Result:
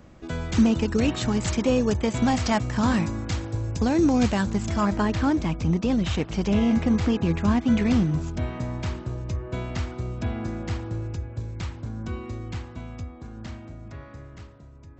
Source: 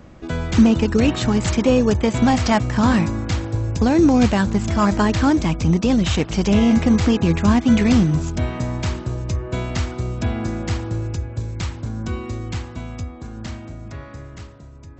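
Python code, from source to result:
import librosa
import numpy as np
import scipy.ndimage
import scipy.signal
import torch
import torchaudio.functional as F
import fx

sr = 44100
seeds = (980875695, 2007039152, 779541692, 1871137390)

y = fx.high_shelf(x, sr, hz=5800.0, db=fx.steps((0.0, 4.0), (4.8, -8.5)))
y = F.gain(torch.from_numpy(y), -6.0).numpy()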